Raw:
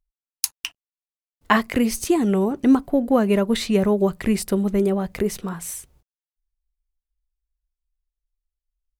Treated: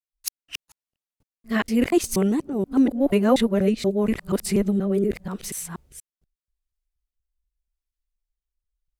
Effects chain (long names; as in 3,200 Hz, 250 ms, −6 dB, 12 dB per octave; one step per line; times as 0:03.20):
reversed piece by piece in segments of 240 ms
rotating-speaker cabinet horn 0.85 Hz